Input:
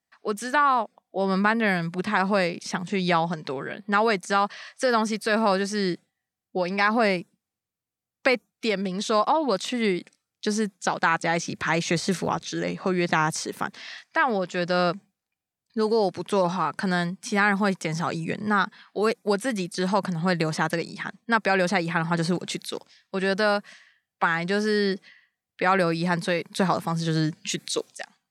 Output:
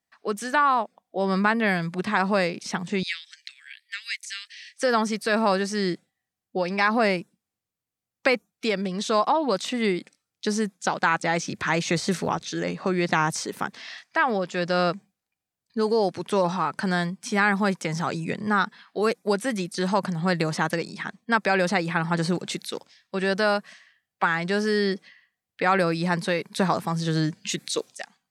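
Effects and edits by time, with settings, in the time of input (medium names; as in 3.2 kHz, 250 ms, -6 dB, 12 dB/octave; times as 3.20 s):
3.03–4.78 s: steep high-pass 1.9 kHz 48 dB/octave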